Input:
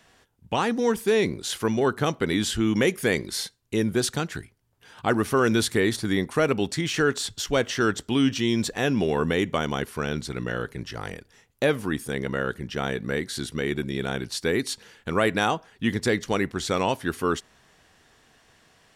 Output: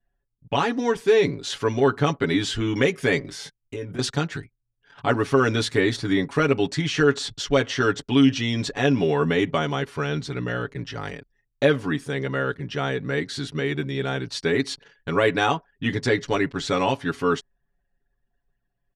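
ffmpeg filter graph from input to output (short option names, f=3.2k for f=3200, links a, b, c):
-filter_complex "[0:a]asettb=1/sr,asplit=3[a][b][c];[a]atrim=end=3.194[d];[b]atrim=start=3.19:end=3.99,asetpts=PTS-STARTPTS,afade=t=in:d=0.004:c=qsin,afade=t=out:st=0.796:d=0.004:c=qsin,equalizer=f=4.1k:t=o:w=0.38:g=-9.5,acompressor=threshold=-32dB:ratio=4:attack=3.2:release=140:knee=1:detection=peak,asplit=2[e][f];[f]adelay=20,volume=-6dB[g];[e][g]amix=inputs=2:normalize=0,atrim=end_sample=35280[h];[c]atrim=start=3.986[i];[d][h]acrossfade=d=0.004:c1=hsin:c2=qsin[j];[j][i]acrossfade=d=0.004:c1=qsin:c2=hsin,anlmdn=0.0158,lowpass=5.6k,aecho=1:1:7.1:0.82"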